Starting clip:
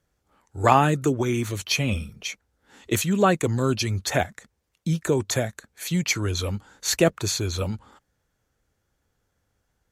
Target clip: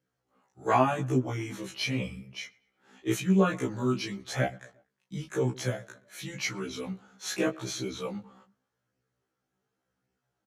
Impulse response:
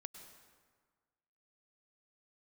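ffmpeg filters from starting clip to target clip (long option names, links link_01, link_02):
-filter_complex "[0:a]highpass=frequency=110:width=0.5412,highpass=frequency=110:width=1.3066,highshelf=frequency=4000:gain=-7,asplit=2[link_01][link_02];[link_02]adelay=111,lowpass=frequency=2900:poles=1,volume=-23dB,asplit=2[link_03][link_04];[link_04]adelay=111,lowpass=frequency=2900:poles=1,volume=0.51,asplit=2[link_05][link_06];[link_06]adelay=111,lowpass=frequency=2900:poles=1,volume=0.51[link_07];[link_03][link_05][link_07]amix=inputs=3:normalize=0[link_08];[link_01][link_08]amix=inputs=2:normalize=0,flanger=delay=15:depth=4.8:speed=0.94,asetrate=41763,aresample=44100,afftfilt=real='re*1.73*eq(mod(b,3),0)':imag='im*1.73*eq(mod(b,3),0)':win_size=2048:overlap=0.75"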